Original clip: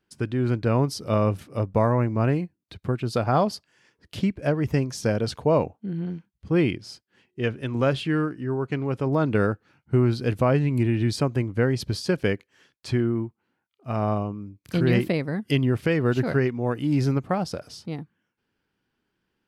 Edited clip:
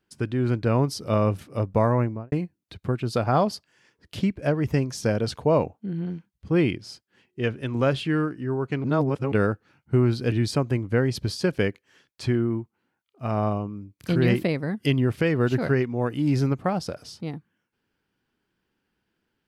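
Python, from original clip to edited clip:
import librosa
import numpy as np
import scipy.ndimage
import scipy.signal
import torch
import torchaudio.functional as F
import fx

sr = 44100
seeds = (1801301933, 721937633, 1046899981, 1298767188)

y = fx.studio_fade_out(x, sr, start_s=1.98, length_s=0.34)
y = fx.edit(y, sr, fx.reverse_span(start_s=8.84, length_s=0.48),
    fx.cut(start_s=10.32, length_s=0.65), tone=tone)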